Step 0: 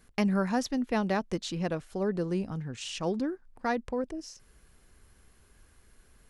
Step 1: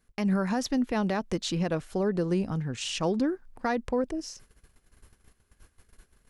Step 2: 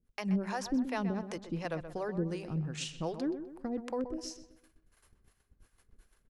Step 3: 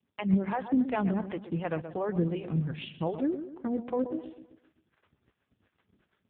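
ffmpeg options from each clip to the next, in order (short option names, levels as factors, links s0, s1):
-af "alimiter=limit=0.0708:level=0:latency=1:release=128,agate=range=0.178:threshold=0.00158:ratio=16:detection=peak,volume=1.78"
-filter_complex "[0:a]acrossover=split=470[s0][s1];[s0]aeval=exprs='val(0)*(1-1/2+1/2*cos(2*PI*2.7*n/s))':c=same[s2];[s1]aeval=exprs='val(0)*(1-1/2-1/2*cos(2*PI*2.7*n/s))':c=same[s3];[s2][s3]amix=inputs=2:normalize=0,asplit=2[s4][s5];[s5]adelay=127,lowpass=f=2300:p=1,volume=0.316,asplit=2[s6][s7];[s7]adelay=127,lowpass=f=2300:p=1,volume=0.44,asplit=2[s8][s9];[s9]adelay=127,lowpass=f=2300:p=1,volume=0.44,asplit=2[s10][s11];[s11]adelay=127,lowpass=f=2300:p=1,volume=0.44,asplit=2[s12][s13];[s13]adelay=127,lowpass=f=2300:p=1,volume=0.44[s14];[s6][s8][s10][s12][s14]amix=inputs=5:normalize=0[s15];[s4][s15]amix=inputs=2:normalize=0,volume=0.794"
-af "volume=1.88" -ar 8000 -c:a libopencore_amrnb -b:a 4750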